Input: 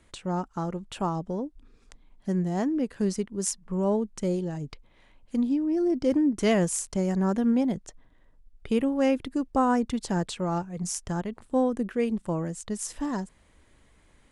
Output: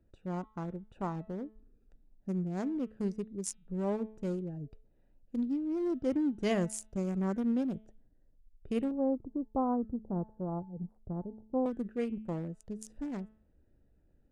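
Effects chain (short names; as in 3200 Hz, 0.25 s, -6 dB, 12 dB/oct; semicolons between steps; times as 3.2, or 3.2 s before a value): Wiener smoothing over 41 samples; de-hum 217.2 Hz, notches 18; 8.91–11.66 inverse Chebyshev low-pass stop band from 2500 Hz, stop band 50 dB; gain -6.5 dB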